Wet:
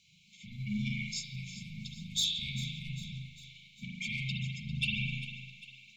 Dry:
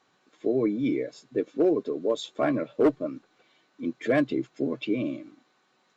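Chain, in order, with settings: 0.52–2.83 high shelf 3600 Hz +8 dB; limiter -24 dBFS, peak gain reduction 10 dB; soft clip -28.5 dBFS, distortion -15 dB; brick-wall FIR band-stop 210–2100 Hz; split-band echo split 500 Hz, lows 0.14 s, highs 0.399 s, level -13.5 dB; spring tank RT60 1.1 s, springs 38 ms, chirp 40 ms, DRR -2.5 dB; gain +7 dB

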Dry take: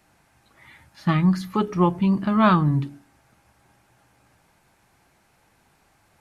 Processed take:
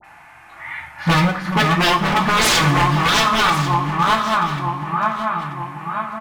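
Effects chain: regenerating reverse delay 0.468 s, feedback 68%, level -4.5 dB; 1.1–2.15 high shelf 2000 Hz -6 dB; harmonic-percussive split harmonic +5 dB; band shelf 1400 Hz +14.5 dB 2.3 oct; in parallel at -1 dB: compressor 5:1, threshold -23 dBFS, peak gain reduction 22.5 dB; on the sum: dispersion highs, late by 44 ms, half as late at 1600 Hz; wavefolder -8 dBFS; echo 1.092 s -14.5 dB; on a send at -3 dB: reverb, pre-delay 3 ms; on the sum: gain -4 dB

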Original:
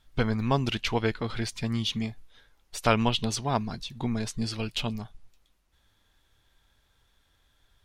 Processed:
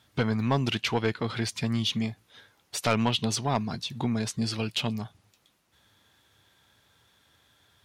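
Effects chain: HPF 90 Hz 24 dB/oct; in parallel at +0.5 dB: compressor, threshold -38 dBFS, peak gain reduction 20.5 dB; on the sum: soft clip -14.5 dBFS, distortion -15 dB

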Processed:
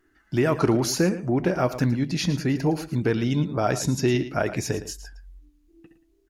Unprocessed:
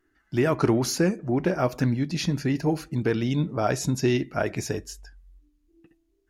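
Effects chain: in parallel at -0.5 dB: compressor, threshold -32 dBFS, peak gain reduction 14.5 dB; on the sum: echo 0.112 s -13.5 dB; gain -1 dB

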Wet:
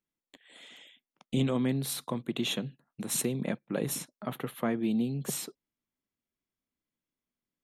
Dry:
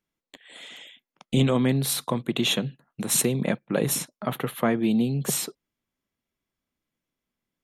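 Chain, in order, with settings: bell 270 Hz +3 dB 1 oct; gain -8.5 dB

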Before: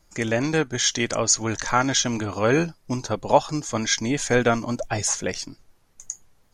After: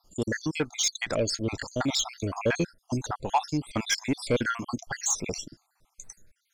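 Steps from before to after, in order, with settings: random spectral dropouts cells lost 61%; 0.9–1.8 high shelf 3800 Hz -> 5300 Hz -5.5 dB; soft clip -16 dBFS, distortion -16 dB

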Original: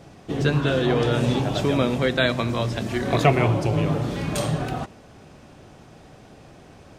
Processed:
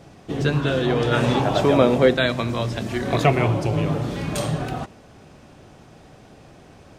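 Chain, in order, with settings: 1.11–2.13 bell 1500 Hz -> 440 Hz +8.5 dB 2.2 oct

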